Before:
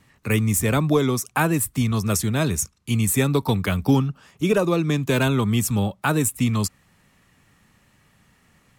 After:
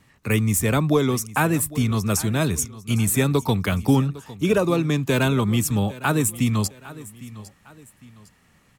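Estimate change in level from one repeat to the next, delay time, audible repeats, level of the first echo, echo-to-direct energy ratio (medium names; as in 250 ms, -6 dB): -8.5 dB, 806 ms, 2, -18.0 dB, -17.5 dB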